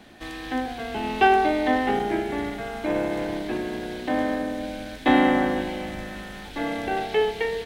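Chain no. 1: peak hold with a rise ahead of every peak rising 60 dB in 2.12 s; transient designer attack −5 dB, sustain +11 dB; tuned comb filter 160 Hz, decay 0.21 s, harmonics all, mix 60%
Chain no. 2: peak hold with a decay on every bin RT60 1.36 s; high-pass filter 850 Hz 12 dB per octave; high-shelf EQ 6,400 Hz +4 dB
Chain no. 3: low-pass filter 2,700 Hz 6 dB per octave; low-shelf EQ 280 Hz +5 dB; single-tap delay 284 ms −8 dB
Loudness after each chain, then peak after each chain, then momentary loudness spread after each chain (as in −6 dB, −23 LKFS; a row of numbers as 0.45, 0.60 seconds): −27.5, −28.0, −23.5 LKFS; −11.0, −8.0, −6.0 dBFS; 12, 14, 12 LU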